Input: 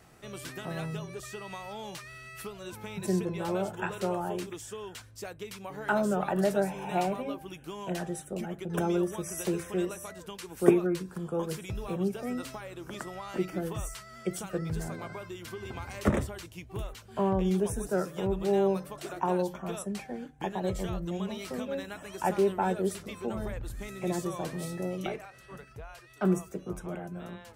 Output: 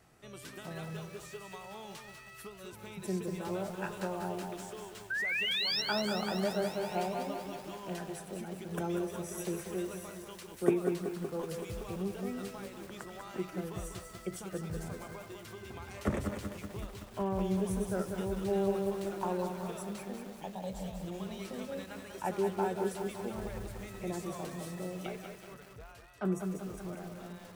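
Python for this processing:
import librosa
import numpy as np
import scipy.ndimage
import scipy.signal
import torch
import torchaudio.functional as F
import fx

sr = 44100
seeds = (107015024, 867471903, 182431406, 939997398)

y = fx.spec_paint(x, sr, seeds[0], shape='rise', start_s=5.1, length_s=0.72, low_hz=1500.0, high_hz=5700.0, level_db=-27.0)
y = fx.fixed_phaser(y, sr, hz=360.0, stages=6, at=(20.38, 21.04))
y = fx.echo_feedback(y, sr, ms=198, feedback_pct=33, wet_db=-8)
y = fx.echo_crushed(y, sr, ms=188, feedback_pct=80, bits=7, wet_db=-9.0)
y = y * librosa.db_to_amplitude(-6.5)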